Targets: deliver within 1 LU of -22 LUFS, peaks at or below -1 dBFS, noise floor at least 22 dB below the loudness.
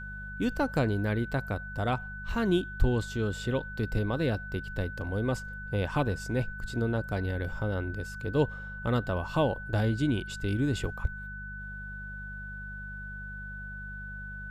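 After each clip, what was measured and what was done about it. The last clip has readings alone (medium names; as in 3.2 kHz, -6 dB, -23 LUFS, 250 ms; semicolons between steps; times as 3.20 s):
hum 50 Hz; highest harmonic 200 Hz; hum level -41 dBFS; steady tone 1.5 kHz; tone level -40 dBFS; loudness -32.0 LUFS; peak level -11.5 dBFS; loudness target -22.0 LUFS
-> de-hum 50 Hz, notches 4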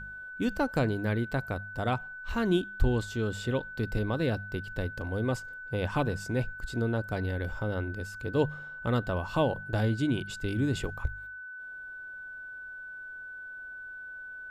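hum not found; steady tone 1.5 kHz; tone level -40 dBFS
-> band-stop 1.5 kHz, Q 30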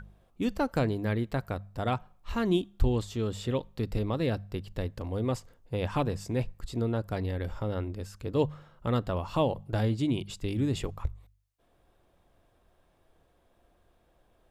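steady tone not found; loudness -32.0 LUFS; peak level -12.5 dBFS; loudness target -22.0 LUFS
-> trim +10 dB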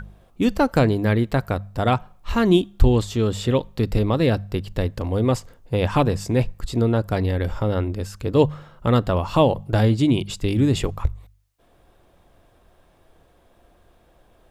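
loudness -22.0 LUFS; peak level -2.5 dBFS; noise floor -58 dBFS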